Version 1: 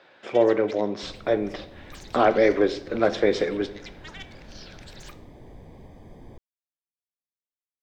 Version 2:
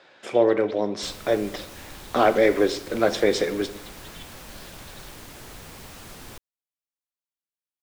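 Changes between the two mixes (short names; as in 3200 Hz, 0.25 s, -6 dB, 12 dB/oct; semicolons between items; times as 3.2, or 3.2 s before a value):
speech: remove air absorption 140 m; first sound: add band-pass 3600 Hz, Q 3; second sound: remove running mean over 32 samples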